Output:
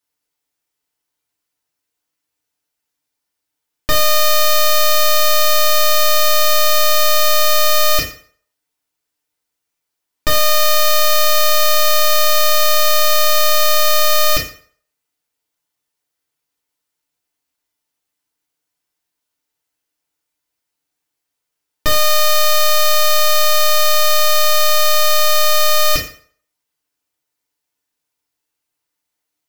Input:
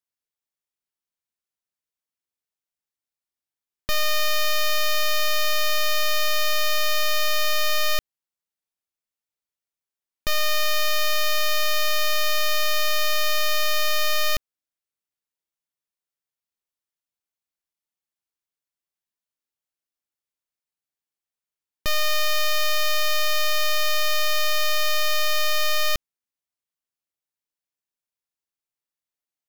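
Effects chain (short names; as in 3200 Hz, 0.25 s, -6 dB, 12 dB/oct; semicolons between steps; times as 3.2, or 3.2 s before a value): FDN reverb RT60 0.5 s, low-frequency decay 0.8×, high-frequency decay 0.8×, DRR -4 dB; gain +7.5 dB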